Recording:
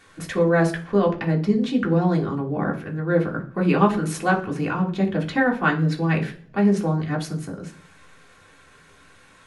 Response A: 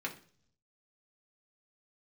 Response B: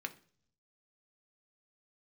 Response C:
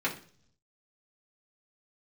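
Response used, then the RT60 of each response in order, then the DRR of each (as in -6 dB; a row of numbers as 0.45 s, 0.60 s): A; 0.50 s, 0.50 s, 0.50 s; -1.5 dB, 5.5 dB, -6.0 dB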